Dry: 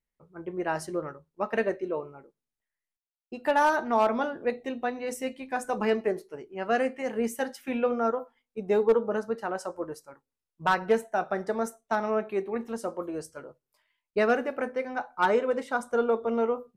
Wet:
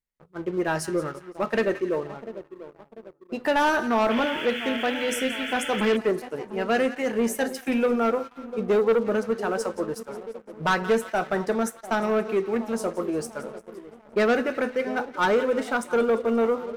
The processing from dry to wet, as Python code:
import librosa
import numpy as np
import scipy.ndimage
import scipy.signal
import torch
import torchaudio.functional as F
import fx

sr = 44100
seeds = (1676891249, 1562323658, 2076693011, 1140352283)

y = fx.dynamic_eq(x, sr, hz=800.0, q=1.2, threshold_db=-39.0, ratio=4.0, max_db=-5)
y = fx.echo_split(y, sr, split_hz=1000.0, low_ms=695, high_ms=174, feedback_pct=52, wet_db=-15.5)
y = fx.spec_paint(y, sr, seeds[0], shape='noise', start_s=4.1, length_s=1.87, low_hz=1300.0, high_hz=3500.0, level_db=-41.0)
y = fx.leveller(y, sr, passes=2)